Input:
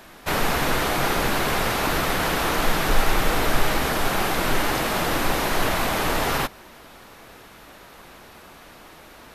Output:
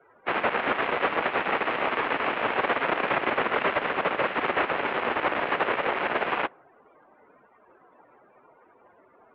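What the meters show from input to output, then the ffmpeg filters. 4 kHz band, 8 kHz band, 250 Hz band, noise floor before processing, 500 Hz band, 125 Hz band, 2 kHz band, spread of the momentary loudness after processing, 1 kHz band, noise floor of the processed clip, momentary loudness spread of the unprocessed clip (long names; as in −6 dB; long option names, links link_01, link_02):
−9.0 dB, below −40 dB, −7.0 dB, −47 dBFS, −1.5 dB, −15.5 dB, −1.5 dB, 2 LU, −1.5 dB, −59 dBFS, 1 LU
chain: -af "afftdn=noise_reduction=23:noise_floor=-43,aeval=exprs='0.531*(cos(1*acos(clip(val(0)/0.531,-1,1)))-cos(1*PI/2))+0.188*(cos(6*acos(clip(val(0)/0.531,-1,1)))-cos(6*PI/2))':channel_layout=same,highpass=frequency=550:width_type=q:width=0.5412,highpass=frequency=550:width_type=q:width=1.307,lowpass=frequency=3000:width_type=q:width=0.5176,lowpass=frequency=3000:width_type=q:width=0.7071,lowpass=frequency=3000:width_type=q:width=1.932,afreqshift=-230,volume=-4dB"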